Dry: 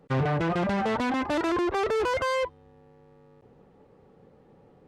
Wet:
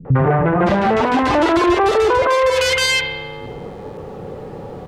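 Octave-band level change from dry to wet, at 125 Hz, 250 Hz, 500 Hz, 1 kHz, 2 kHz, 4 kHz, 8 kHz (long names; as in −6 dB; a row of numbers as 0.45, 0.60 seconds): +11.5, +10.5, +12.5, +12.5, +13.0, +18.0, +19.0 decibels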